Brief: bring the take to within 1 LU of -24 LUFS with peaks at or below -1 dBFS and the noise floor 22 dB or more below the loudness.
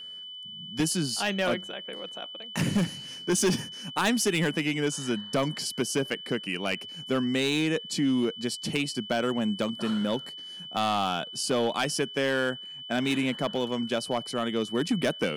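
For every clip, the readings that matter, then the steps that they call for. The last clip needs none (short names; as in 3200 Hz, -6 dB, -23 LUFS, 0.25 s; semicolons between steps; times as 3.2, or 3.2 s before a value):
clipped 0.9%; flat tops at -19.0 dBFS; steady tone 3000 Hz; tone level -39 dBFS; loudness -28.5 LUFS; peak -19.0 dBFS; loudness target -24.0 LUFS
-> clip repair -19 dBFS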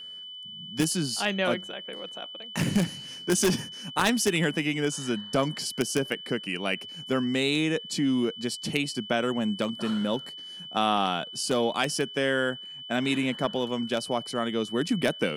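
clipped 0.0%; steady tone 3000 Hz; tone level -39 dBFS
-> notch 3000 Hz, Q 30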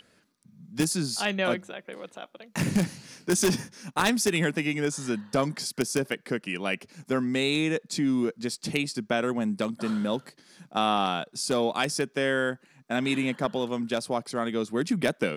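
steady tone none; loudness -28.0 LUFS; peak -9.5 dBFS; loudness target -24.0 LUFS
-> gain +4 dB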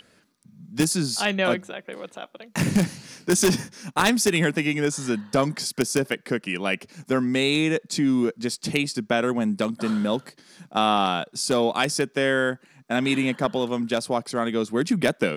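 loudness -24.0 LUFS; peak -6.0 dBFS; noise floor -60 dBFS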